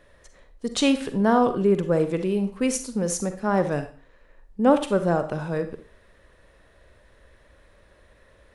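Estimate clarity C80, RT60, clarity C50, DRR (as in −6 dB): 15.5 dB, 0.40 s, 10.5 dB, 9.0 dB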